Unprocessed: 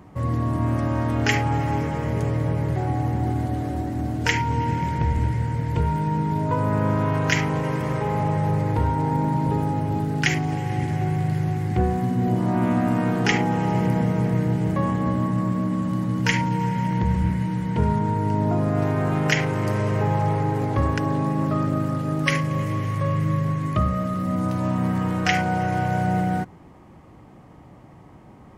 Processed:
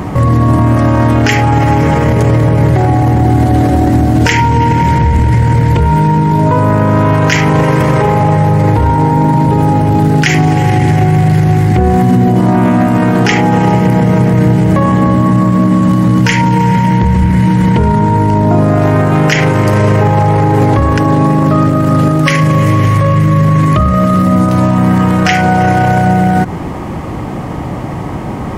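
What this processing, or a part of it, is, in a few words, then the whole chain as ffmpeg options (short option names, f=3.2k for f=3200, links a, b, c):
loud club master: -af "acompressor=threshold=-26dB:ratio=2.5,asoftclip=type=hard:threshold=-17dB,alimiter=level_in=28.5dB:limit=-1dB:release=50:level=0:latency=1,volume=-1dB"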